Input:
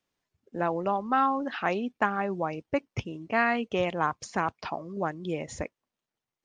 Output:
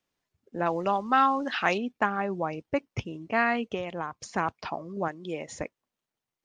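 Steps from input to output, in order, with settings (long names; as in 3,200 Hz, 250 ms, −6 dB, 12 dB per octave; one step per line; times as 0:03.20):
0:00.66–0:01.78: high-shelf EQ 2,000 Hz +11 dB
0:03.74–0:04.30: downward compressor 10 to 1, threshold −29 dBFS, peak gain reduction 9 dB
0:05.08–0:05.61: high-pass filter 300 Hz 6 dB per octave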